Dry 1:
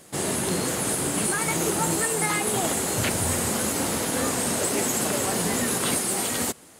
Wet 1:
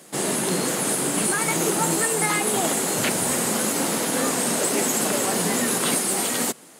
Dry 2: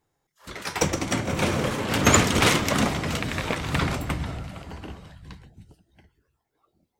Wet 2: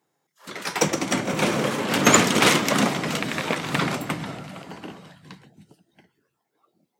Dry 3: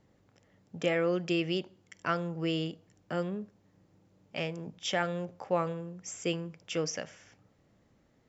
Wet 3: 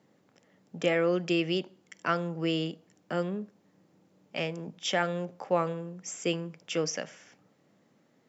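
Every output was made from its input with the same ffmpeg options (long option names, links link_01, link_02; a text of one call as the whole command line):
ffmpeg -i in.wav -af "highpass=frequency=150:width=0.5412,highpass=frequency=150:width=1.3066,volume=2.5dB" out.wav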